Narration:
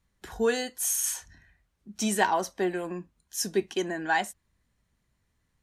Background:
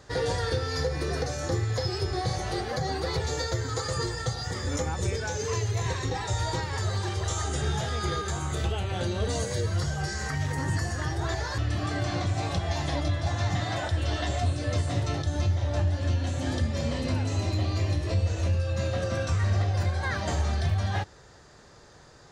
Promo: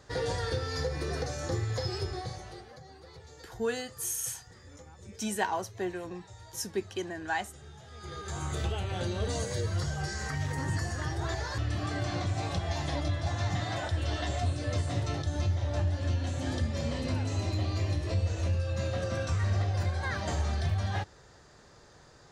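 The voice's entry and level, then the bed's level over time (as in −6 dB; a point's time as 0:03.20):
3.20 s, −6.0 dB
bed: 0:02.00 −4 dB
0:02.85 −21.5 dB
0:07.82 −21.5 dB
0:08.42 −3.5 dB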